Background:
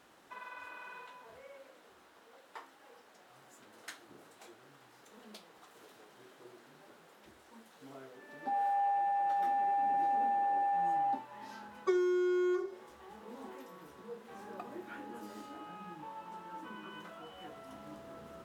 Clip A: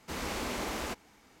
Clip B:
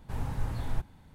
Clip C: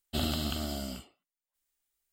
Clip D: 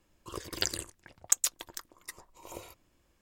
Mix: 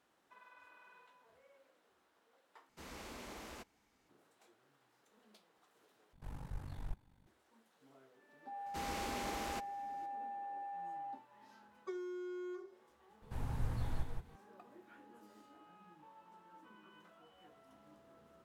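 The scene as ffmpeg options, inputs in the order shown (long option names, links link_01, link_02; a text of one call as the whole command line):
ffmpeg -i bed.wav -i cue0.wav -i cue1.wav -filter_complex "[1:a]asplit=2[link_01][link_02];[2:a]asplit=2[link_03][link_04];[0:a]volume=-13.5dB[link_05];[link_03]aeval=exprs='val(0)*sin(2*PI*24*n/s)':channel_layout=same[link_06];[link_04]aecho=1:1:174:0.531[link_07];[link_05]asplit=3[link_08][link_09][link_10];[link_08]atrim=end=2.694[link_11];[link_01]atrim=end=1.4,asetpts=PTS-STARTPTS,volume=-14.5dB[link_12];[link_09]atrim=start=4.086:end=6.134[link_13];[link_06]atrim=end=1.14,asetpts=PTS-STARTPTS,volume=-10.5dB[link_14];[link_10]atrim=start=7.266[link_15];[link_02]atrim=end=1.4,asetpts=PTS-STARTPTS,volume=-6.5dB,afade=type=in:duration=0.004:curve=hsin,afade=type=out:start_time=1.396:duration=0.004:curve=hsin,adelay=381906S[link_16];[link_07]atrim=end=1.14,asetpts=PTS-STARTPTS,volume=-7dB,afade=type=in:duration=0.004:curve=hsin,afade=type=out:start_time=1.136:duration=0.004:curve=hsin,adelay=13220[link_17];[link_11][link_12]acrossfade=duration=0.004:curve1=hsin:curve2=hsin[link_18];[link_18][link_13]acrossfade=duration=0.004:curve1=hsin:curve2=hsin[link_19];[link_19][link_14]acrossfade=duration=0.004:curve1=hsin:curve2=hsin[link_20];[link_20][link_15]acrossfade=duration=0.004:curve1=hsin:curve2=hsin[link_21];[link_21][link_16][link_17]amix=inputs=3:normalize=0" out.wav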